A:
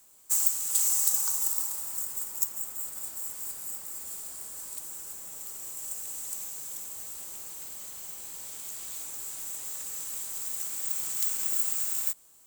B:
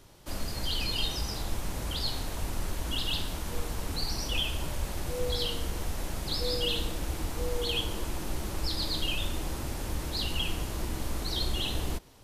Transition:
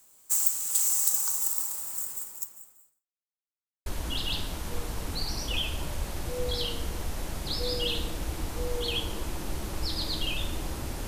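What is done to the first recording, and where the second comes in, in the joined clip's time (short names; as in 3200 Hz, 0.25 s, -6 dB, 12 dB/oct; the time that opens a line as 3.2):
A
2.09–3.07 fade out quadratic
3.07–3.86 mute
3.86 switch to B from 2.67 s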